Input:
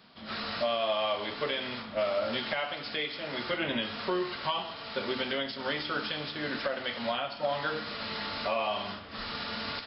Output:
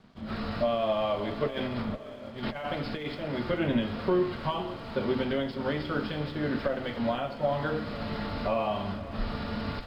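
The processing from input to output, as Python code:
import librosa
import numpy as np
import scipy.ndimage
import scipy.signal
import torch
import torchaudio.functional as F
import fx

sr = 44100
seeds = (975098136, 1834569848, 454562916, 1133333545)

y = fx.tilt_eq(x, sr, slope=-4.0)
y = fx.over_compress(y, sr, threshold_db=-34.0, ratio=-0.5, at=(1.47, 3.15))
y = fx.echo_diffused(y, sr, ms=553, feedback_pct=43, wet_db=-15.0)
y = np.sign(y) * np.maximum(np.abs(y) - 10.0 ** (-59.5 / 20.0), 0.0)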